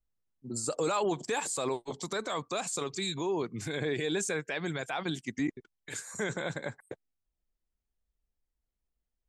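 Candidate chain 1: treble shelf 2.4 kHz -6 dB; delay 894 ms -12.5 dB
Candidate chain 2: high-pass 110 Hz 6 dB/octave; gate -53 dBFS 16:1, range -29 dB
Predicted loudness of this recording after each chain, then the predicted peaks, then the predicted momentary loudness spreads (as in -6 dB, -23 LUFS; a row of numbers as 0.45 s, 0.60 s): -34.5 LUFS, -34.0 LUFS; -21.0 dBFS, -19.5 dBFS; 15 LU, 10 LU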